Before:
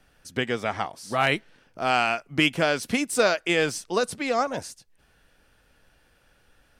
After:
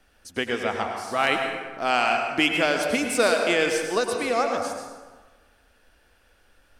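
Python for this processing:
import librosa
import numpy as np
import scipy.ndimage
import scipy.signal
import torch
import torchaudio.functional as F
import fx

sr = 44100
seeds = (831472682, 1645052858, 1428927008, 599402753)

y = fx.peak_eq(x, sr, hz=140.0, db=-13.5, octaves=0.54)
y = fx.rev_plate(y, sr, seeds[0], rt60_s=1.4, hf_ratio=0.6, predelay_ms=85, drr_db=3.5)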